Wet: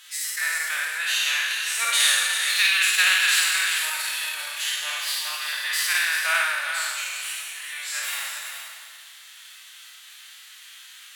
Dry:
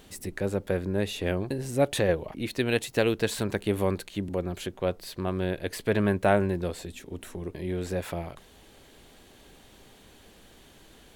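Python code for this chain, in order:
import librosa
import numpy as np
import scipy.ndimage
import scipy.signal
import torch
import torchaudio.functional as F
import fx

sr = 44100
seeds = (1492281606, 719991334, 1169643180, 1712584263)

p1 = fx.spec_trails(x, sr, decay_s=1.96)
p2 = fx.pitch_keep_formants(p1, sr, semitones=8.5)
p3 = scipy.signal.sosfilt(scipy.signal.butter(4, 1500.0, 'highpass', fs=sr, output='sos'), p2)
p4 = p3 + fx.echo_multitap(p3, sr, ms=(53, 394, 496), db=(-3.5, -7.5, -13.0), dry=0)
y = p4 * librosa.db_to_amplitude(8.5)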